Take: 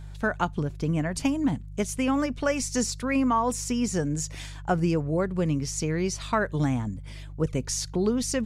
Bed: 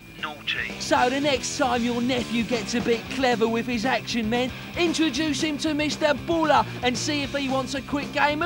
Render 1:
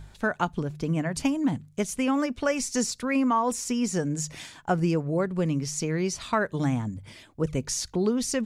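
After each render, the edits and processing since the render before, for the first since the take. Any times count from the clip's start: de-hum 50 Hz, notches 3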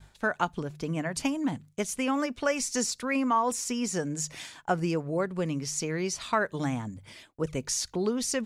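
bass shelf 300 Hz -7.5 dB; expander -48 dBFS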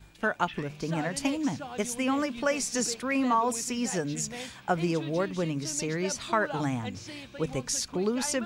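add bed -17.5 dB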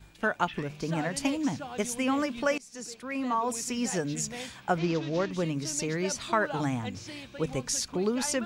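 2.58–3.80 s: fade in linear, from -23.5 dB; 4.78–5.31 s: CVSD coder 32 kbps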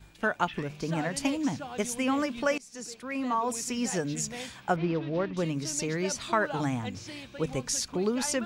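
4.76–5.37 s: distance through air 280 m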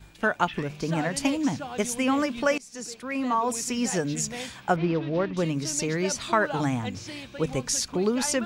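trim +3.5 dB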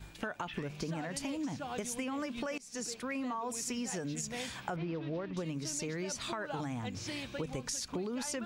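peak limiter -19 dBFS, peak gain reduction 10 dB; compression 6:1, threshold -35 dBFS, peak gain reduction 11.5 dB

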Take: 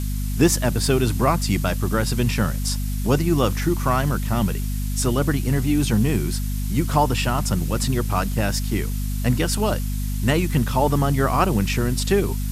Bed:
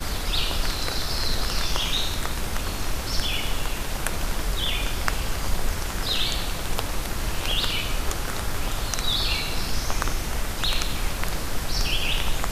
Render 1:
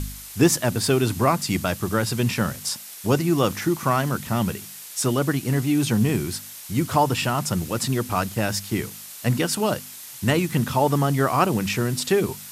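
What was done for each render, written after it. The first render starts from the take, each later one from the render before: de-hum 50 Hz, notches 5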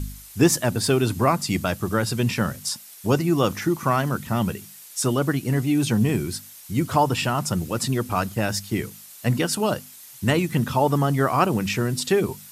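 noise reduction 7 dB, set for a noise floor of -40 dBFS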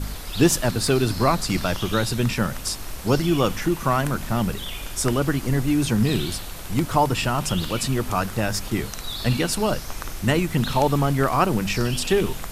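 add bed -7.5 dB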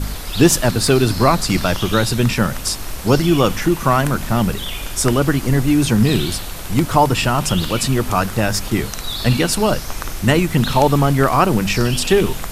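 trim +6 dB; peak limiter -1 dBFS, peak gain reduction 1.5 dB

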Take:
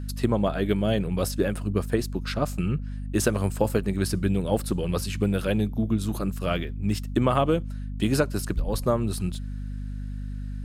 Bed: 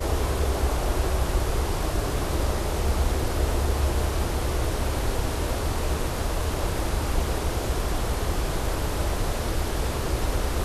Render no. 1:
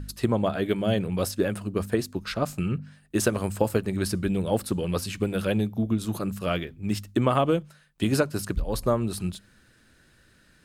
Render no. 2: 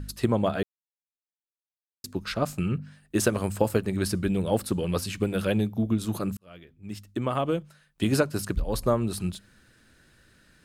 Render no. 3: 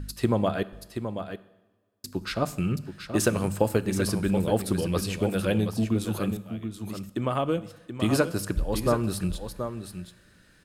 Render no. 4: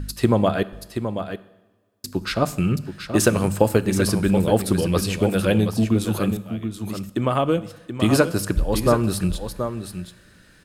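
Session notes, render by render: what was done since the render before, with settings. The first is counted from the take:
de-hum 50 Hz, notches 5
0.63–2.04 s: mute; 6.37–8.11 s: fade in
on a send: delay 728 ms -8.5 dB; on the sum: two-slope reverb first 0.89 s, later 2.3 s, from -17 dB, DRR 15 dB
trim +6 dB

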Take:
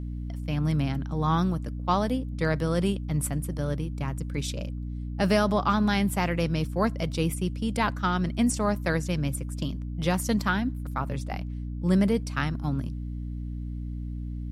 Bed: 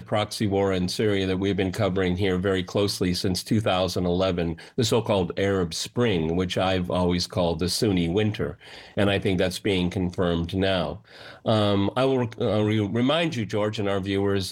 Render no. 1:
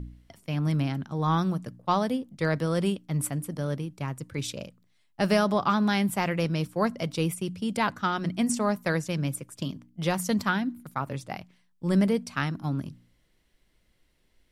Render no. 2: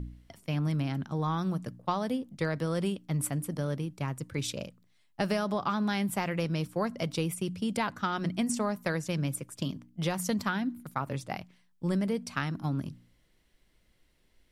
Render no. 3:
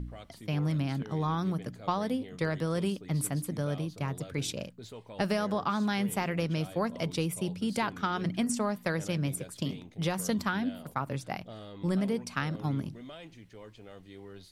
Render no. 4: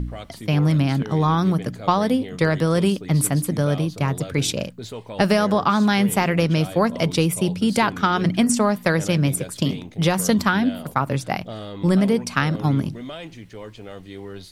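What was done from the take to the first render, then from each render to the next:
de-hum 60 Hz, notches 5
compression, threshold -26 dBFS, peak gain reduction 8.5 dB
add bed -24 dB
trim +11.5 dB

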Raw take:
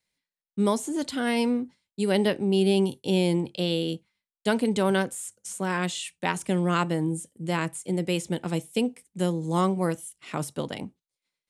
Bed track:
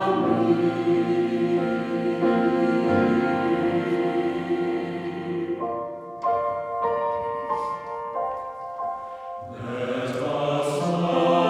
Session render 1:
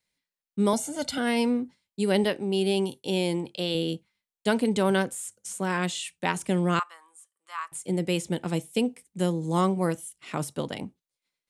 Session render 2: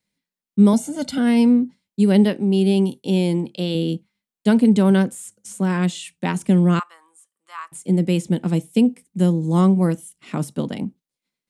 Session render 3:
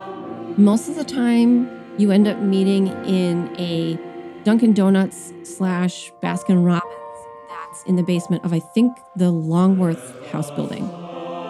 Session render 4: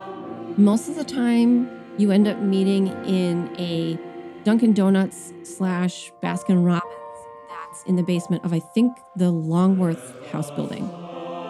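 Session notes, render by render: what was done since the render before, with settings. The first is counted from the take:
0.73–1.18 s: comb 1.4 ms, depth 95%; 2.24–3.75 s: bass shelf 260 Hz -8 dB; 6.79–7.72 s: ladder high-pass 1.1 kHz, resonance 80%
peaking EQ 210 Hz +12.5 dB 1.3 oct
add bed track -10 dB
trim -2.5 dB

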